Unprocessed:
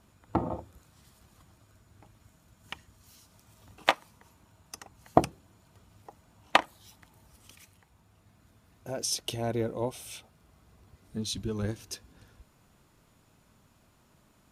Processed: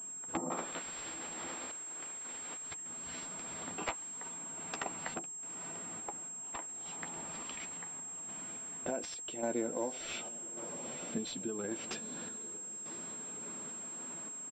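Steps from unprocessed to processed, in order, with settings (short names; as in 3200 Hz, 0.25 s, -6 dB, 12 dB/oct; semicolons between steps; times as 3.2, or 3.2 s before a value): 0.5–2.73 spectral limiter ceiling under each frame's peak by 26 dB; HPF 190 Hz 24 dB/oct; compressor 16:1, threshold -43 dBFS, peak gain reduction 29.5 dB; wavefolder -36 dBFS; doubler 12 ms -8.5 dB; diffused feedback echo 0.941 s, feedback 45%, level -13 dB; random-step tremolo, depth 75%; pulse-width modulation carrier 7500 Hz; gain +15 dB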